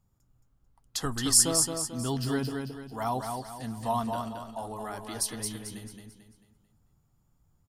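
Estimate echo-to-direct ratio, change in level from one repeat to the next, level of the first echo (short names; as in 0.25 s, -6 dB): -4.5 dB, -8.0 dB, -5.0 dB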